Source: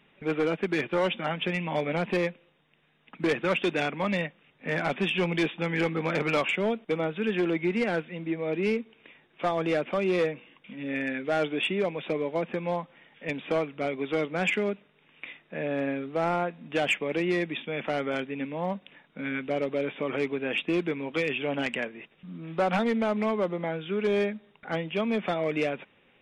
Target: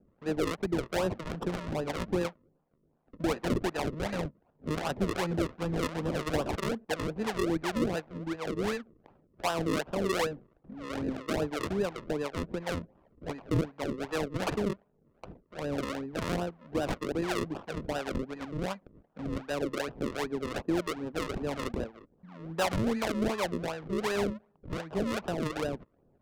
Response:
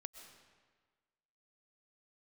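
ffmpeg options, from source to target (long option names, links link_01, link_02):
-filter_complex "[0:a]acrusher=samples=39:mix=1:aa=0.000001:lfo=1:lforange=39:lforate=2.6,adynamicsmooth=sensitivity=3.5:basefreq=980,acrossover=split=560[link_01][link_02];[link_01]aeval=exprs='val(0)*(1-0.7/2+0.7/2*cos(2*PI*2.8*n/s))':channel_layout=same[link_03];[link_02]aeval=exprs='val(0)*(1-0.7/2-0.7/2*cos(2*PI*2.8*n/s))':channel_layout=same[link_04];[link_03][link_04]amix=inputs=2:normalize=0"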